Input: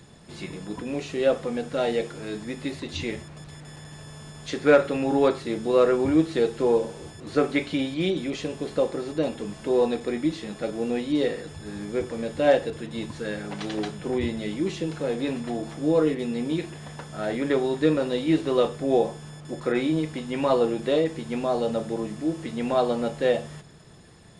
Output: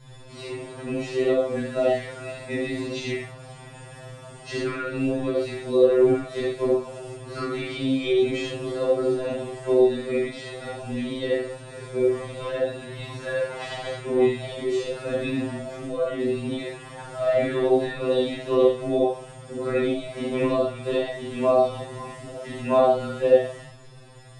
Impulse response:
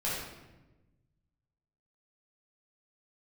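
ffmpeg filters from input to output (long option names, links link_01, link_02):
-filter_complex "[0:a]acompressor=threshold=-23dB:ratio=5[link_01];[1:a]atrim=start_sample=2205,atrim=end_sample=6615[link_02];[link_01][link_02]afir=irnorm=-1:irlink=0,afftfilt=real='re*2.45*eq(mod(b,6),0)':imag='im*2.45*eq(mod(b,6),0)':win_size=2048:overlap=0.75"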